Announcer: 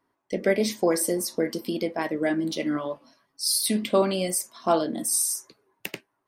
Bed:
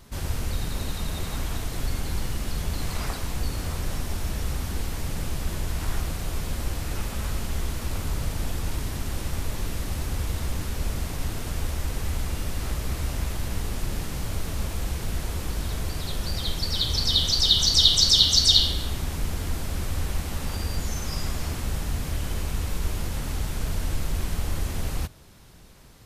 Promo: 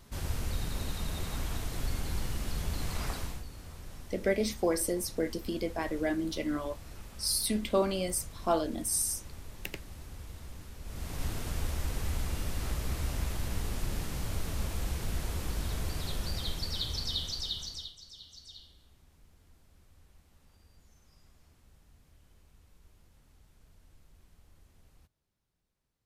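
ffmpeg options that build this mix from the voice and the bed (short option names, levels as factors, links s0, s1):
-filter_complex "[0:a]adelay=3800,volume=0.501[s0];[1:a]volume=2.11,afade=t=out:st=3.2:d=0.24:silence=0.266073,afade=t=in:st=10.84:d=0.41:silence=0.251189,afade=t=out:st=16.07:d=1.87:silence=0.0398107[s1];[s0][s1]amix=inputs=2:normalize=0"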